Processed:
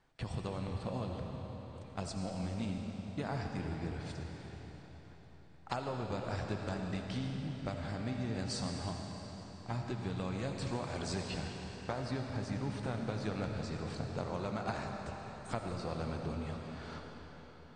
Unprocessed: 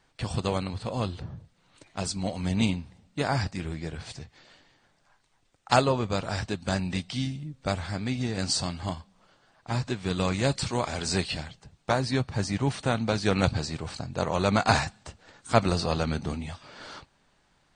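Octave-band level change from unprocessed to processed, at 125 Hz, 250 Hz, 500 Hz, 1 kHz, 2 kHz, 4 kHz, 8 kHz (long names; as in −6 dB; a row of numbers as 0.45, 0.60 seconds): −8.5, −9.0, −11.0, −12.0, −13.0, −13.5, −14.0 decibels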